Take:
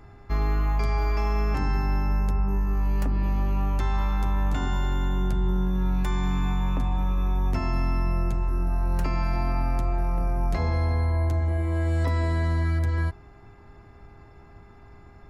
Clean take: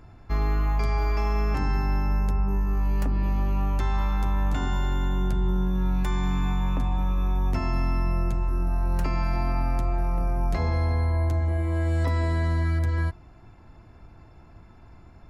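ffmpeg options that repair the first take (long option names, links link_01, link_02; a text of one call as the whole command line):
ffmpeg -i in.wav -af "bandreject=frequency=404.5:width_type=h:width=4,bandreject=frequency=809:width_type=h:width=4,bandreject=frequency=1213.5:width_type=h:width=4,bandreject=frequency=1618:width_type=h:width=4,bandreject=frequency=2022.5:width_type=h:width=4" out.wav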